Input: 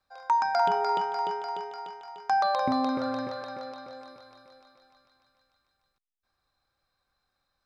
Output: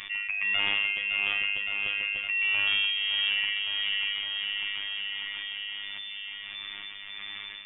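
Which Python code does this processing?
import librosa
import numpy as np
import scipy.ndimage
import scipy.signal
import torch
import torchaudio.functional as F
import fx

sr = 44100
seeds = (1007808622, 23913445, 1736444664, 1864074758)

p1 = fx.room_shoebox(x, sr, seeds[0], volume_m3=350.0, walls='furnished', distance_m=0.84)
p2 = fx.rider(p1, sr, range_db=5, speed_s=2.0)
p3 = p1 + (p2 * librosa.db_to_amplitude(2.5))
p4 = p3 * (1.0 - 0.88 / 2.0 + 0.88 / 2.0 * np.cos(2.0 * np.pi * 1.5 * (np.arange(len(p3)) / sr)))
p5 = 10.0 ** (-20.5 / 20.0) * np.tanh(p4 / 10.0 ** (-20.5 / 20.0))
p6 = p5 + fx.echo_feedback(p5, sr, ms=563, feedback_pct=46, wet_db=-14.0, dry=0)
p7 = fx.freq_invert(p6, sr, carrier_hz=3500)
p8 = fx.robotise(p7, sr, hz=101.0)
p9 = fx.peak_eq(p8, sr, hz=490.0, db=-7.0, octaves=0.25)
p10 = fx.env_flatten(p9, sr, amount_pct=70)
y = p10 * librosa.db_to_amplitude(-2.0)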